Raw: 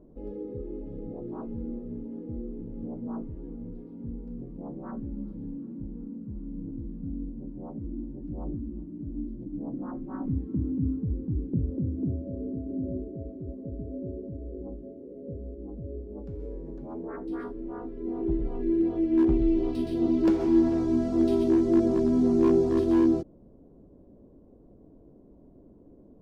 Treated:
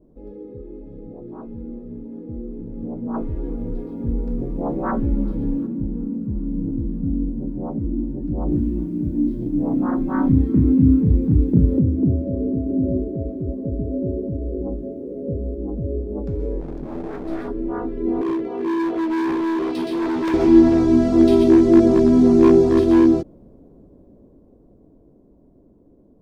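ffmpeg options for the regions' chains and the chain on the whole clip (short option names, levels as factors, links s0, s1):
-filter_complex "[0:a]asettb=1/sr,asplit=3[s0][s1][s2];[s0]atrim=end=3.144[s3];[s1]atrim=start=3.14:end=5.67,asetpts=PTS-STARTPTS,afade=t=in:d=0.004:c=qsin,afade=t=out:st=2.526:d=0.004:c=qsin,equalizer=f=180:t=o:w=1.7:g=-8,acontrast=72[s4];[s2]atrim=start=5.666[s5];[s3][s4]acrossfade=d=0.004:c1=hsin:c2=qsin[s6];[s6][s5]acrossfade=d=0.004:c1=qsin:c2=hsin,asettb=1/sr,asplit=3[s7][s8][s9];[s7]atrim=end=8.484[s10];[s8]atrim=start=8.48:end=11.81,asetpts=PTS-STARTPTS,afade=t=in:d=0.004:c=qsin,afade=t=out:st=3.326:d=0.004:c=qsin,highshelf=f=2100:g=10,asplit=2[s11][s12];[s12]adelay=34,volume=0.708[s13];[s11][s13]amix=inputs=2:normalize=0,atrim=end_sample=146853[s14];[s9]atrim=start=11.806[s15];[s10][s14]acrossfade=d=0.004:c1=hsin:c2=qsin[s16];[s16][s15]acrossfade=d=0.004:c1=qsin:c2=hsin,asettb=1/sr,asplit=3[s17][s18][s19];[s17]atrim=end=16.604[s20];[s18]atrim=start=16.6:end=17.48,asetpts=PTS-STARTPTS,afade=t=in:d=0.004:c=qsin,afade=t=out:st=0.876:d=0.004:c=qsin,equalizer=f=1100:t=o:w=2:g=-7.5,aeval=exprs='clip(val(0),-1,0.00447)':c=same[s21];[s19]atrim=start=17.476[s22];[s20][s21]acrossfade=d=0.004:c1=hsin:c2=qsin[s23];[s23][s22]acrossfade=d=0.004:c1=qsin:c2=hsin,asettb=1/sr,asplit=3[s24][s25][s26];[s24]atrim=end=18.214[s27];[s25]atrim=start=18.21:end=20.34,asetpts=PTS-STARTPTS,afade=t=in:d=0.004:c=qsin,afade=t=out:st=2.126:d=0.004:c=qsin,highpass=300,asoftclip=type=hard:threshold=0.0316[s28];[s26]atrim=start=20.336[s29];[s27][s28]acrossfade=d=0.004:c1=hsin:c2=qsin[s30];[s30][s29]acrossfade=d=0.004:c1=qsin:c2=hsin,bandreject=f=2900:w=19,adynamicequalizer=threshold=0.00316:dfrequency=2500:dqfactor=0.75:tfrequency=2500:tqfactor=0.75:attack=5:release=100:ratio=0.375:range=2:mode=boostabove:tftype=bell,dynaudnorm=f=390:g=17:m=4.47"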